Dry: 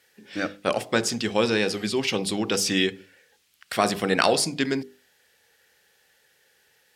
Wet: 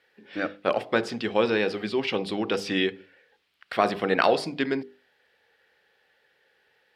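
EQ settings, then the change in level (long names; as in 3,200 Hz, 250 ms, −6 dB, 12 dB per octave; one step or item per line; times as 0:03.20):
high-frequency loss of the air 420 metres
bass and treble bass −8 dB, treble +9 dB
+2.0 dB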